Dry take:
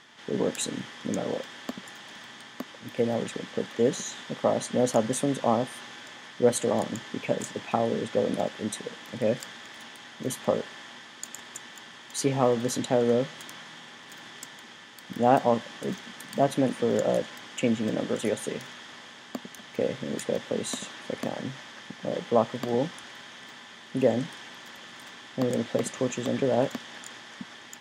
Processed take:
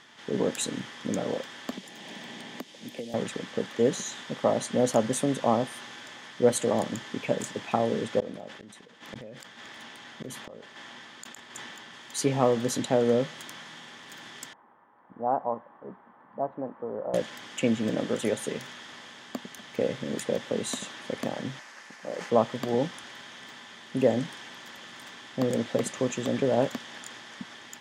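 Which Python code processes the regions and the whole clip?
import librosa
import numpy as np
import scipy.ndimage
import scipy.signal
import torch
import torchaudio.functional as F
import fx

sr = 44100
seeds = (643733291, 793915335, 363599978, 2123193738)

y = fx.chain(x, sr, fx.cheby1_highpass(hz=160.0, order=3),
    fx.peak_eq(hz=1300.0, db=-13.5, octaves=1.1),
    fx.band_squash(depth_pct=100), at=(1.72, 3.14))
y = fx.chain(y, sr, fx.high_shelf(hz=6000.0, db=-5.5),
    fx.gate_flip(shuts_db=-27.0, range_db=-33),
    fx.sustainer(db_per_s=25.0), at=(8.2, 11.94))
y = fx.chain(y, sr, fx.ladder_lowpass(hz=1200.0, resonance_pct=45),
    fx.peak_eq(hz=140.0, db=-6.0, octaves=2.4), at=(14.53, 17.14))
y = fx.chain(y, sr, fx.highpass(hz=760.0, slope=6),
    fx.peak_eq(hz=3400.0, db=-11.0, octaves=0.39),
    fx.sustainer(db_per_s=85.0), at=(21.59, 22.3))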